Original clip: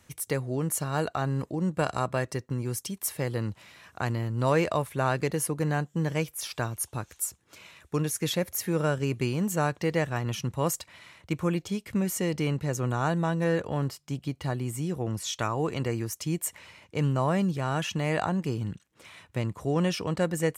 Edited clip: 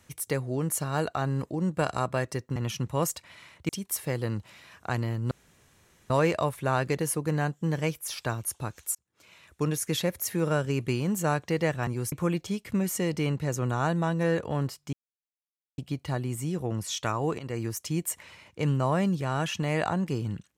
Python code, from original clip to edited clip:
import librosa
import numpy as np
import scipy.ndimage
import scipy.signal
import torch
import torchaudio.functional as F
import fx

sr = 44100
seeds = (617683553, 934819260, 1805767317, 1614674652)

y = fx.edit(x, sr, fx.swap(start_s=2.56, length_s=0.25, other_s=10.2, other_length_s=1.13),
    fx.insert_room_tone(at_s=4.43, length_s=0.79),
    fx.fade_in_span(start_s=7.28, length_s=0.68),
    fx.insert_silence(at_s=14.14, length_s=0.85),
    fx.fade_in_from(start_s=15.75, length_s=0.26, floor_db=-13.5), tone=tone)